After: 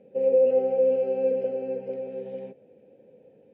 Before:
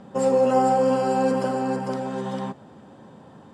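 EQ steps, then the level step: double band-pass 1100 Hz, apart 2.3 oct; air absorption 110 m; tilt -3.5 dB/oct; 0.0 dB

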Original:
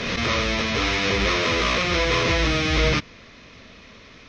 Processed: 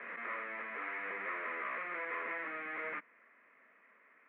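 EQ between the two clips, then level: HPF 200 Hz 24 dB/oct; steep low-pass 2000 Hz 48 dB/oct; differentiator; +1.0 dB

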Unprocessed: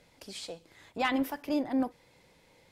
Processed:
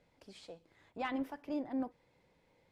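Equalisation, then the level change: LPF 12000 Hz 12 dB/oct; high shelf 3100 Hz -11 dB; -7.5 dB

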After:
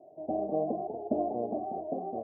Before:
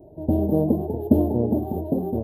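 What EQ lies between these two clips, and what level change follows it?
vowel filter a; HPF 160 Hz 12 dB/oct; tilt -3 dB/oct; +2.5 dB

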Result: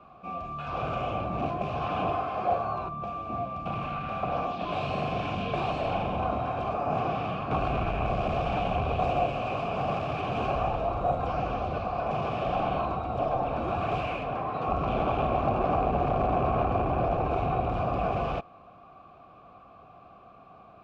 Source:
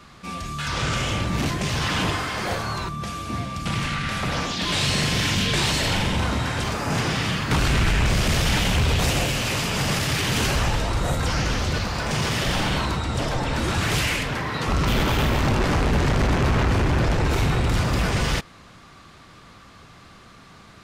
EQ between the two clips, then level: vowel filter a; tilt -4.5 dB/oct; +6.5 dB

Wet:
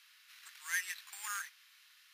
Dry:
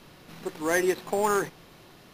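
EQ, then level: inverse Chebyshev high-pass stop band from 590 Hz, stop band 50 dB; -5.5 dB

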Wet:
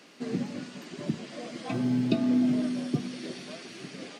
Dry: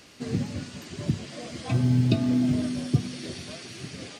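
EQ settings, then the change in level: HPF 180 Hz 24 dB/oct; high shelf 4000 Hz -8 dB; 0.0 dB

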